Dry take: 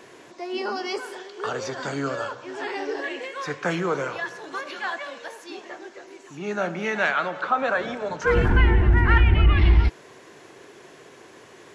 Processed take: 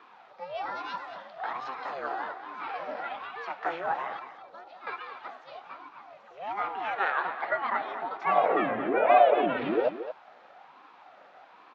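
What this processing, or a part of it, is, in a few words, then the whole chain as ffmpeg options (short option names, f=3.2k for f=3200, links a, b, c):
voice changer toy: -filter_complex "[0:a]asettb=1/sr,asplit=3[a][b][c];[a]atrim=end=4.194[d];[b]atrim=start=4.19:end=4.87,asetpts=PTS-STARTPTS,afade=t=in:d=0.004:c=qsin,afade=t=out:st=0.676:d=0.004:c=qsin,equalizer=f=1.8k:t=o:w=2.9:g=-14[e];[c]atrim=start=4.866[f];[d][e]acrossfade=d=0.004:c1=hsin:c2=qsin[g];[g][f]acrossfade=d=0.004:c1=qsin:c2=hsin,aeval=exprs='val(0)*sin(2*PI*420*n/s+420*0.6/1.2*sin(2*PI*1.2*n/s))':c=same,highpass=480,equalizer=f=750:t=q:w=4:g=8,equalizer=f=1.3k:t=q:w=4:g=4,equalizer=f=2.1k:t=q:w=4:g=-4,equalizer=f=3k:t=q:w=4:g=-4,lowpass=f=3.7k:w=0.5412,lowpass=f=3.7k:w=1.3066,aecho=1:1:227:0.282,volume=-3.5dB"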